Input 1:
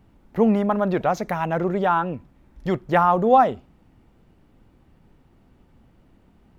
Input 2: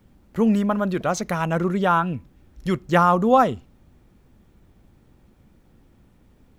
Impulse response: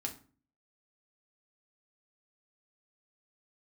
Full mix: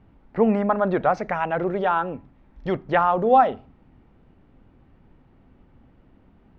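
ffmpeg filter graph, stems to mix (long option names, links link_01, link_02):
-filter_complex "[0:a]volume=-0.5dB,asplit=2[link_01][link_02];[link_02]volume=-14dB[link_03];[1:a]volume=-1,volume=-9.5dB[link_04];[2:a]atrim=start_sample=2205[link_05];[link_03][link_05]afir=irnorm=-1:irlink=0[link_06];[link_01][link_04][link_06]amix=inputs=3:normalize=0,lowpass=2800"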